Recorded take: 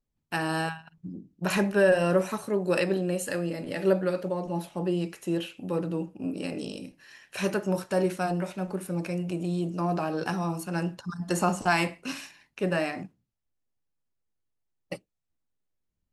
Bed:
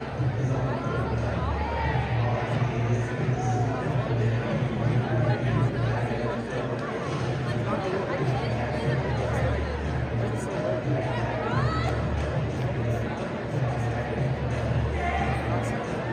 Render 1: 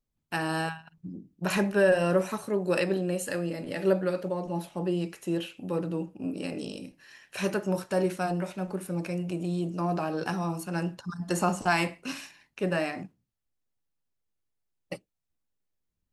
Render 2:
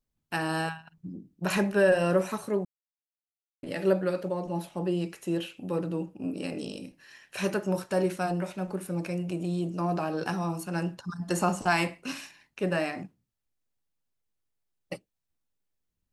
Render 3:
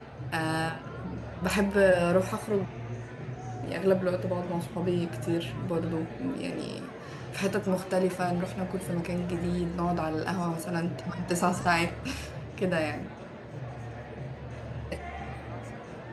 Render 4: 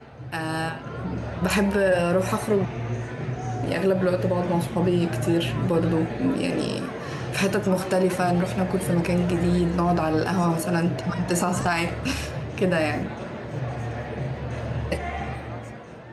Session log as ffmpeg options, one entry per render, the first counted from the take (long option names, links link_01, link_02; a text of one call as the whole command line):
ffmpeg -i in.wav -af "volume=-1dB" out.wav
ffmpeg -i in.wav -filter_complex "[0:a]asplit=3[link_01][link_02][link_03];[link_01]atrim=end=2.65,asetpts=PTS-STARTPTS,afade=type=out:start_time=2.646:duration=0.004:curve=hsin[link_04];[link_02]atrim=start=2.65:end=3.63,asetpts=PTS-STARTPTS,volume=0[link_05];[link_03]atrim=start=3.63,asetpts=PTS-STARTPTS,afade=type=in:duration=0.004:curve=hsin[link_06];[link_04][link_05][link_06]concat=n=3:v=0:a=1" out.wav
ffmpeg -i in.wav -i bed.wav -filter_complex "[1:a]volume=-12.5dB[link_01];[0:a][link_01]amix=inputs=2:normalize=0" out.wav
ffmpeg -i in.wav -af "dynaudnorm=framelen=160:gausssize=11:maxgain=9.5dB,alimiter=limit=-12.5dB:level=0:latency=1:release=89" out.wav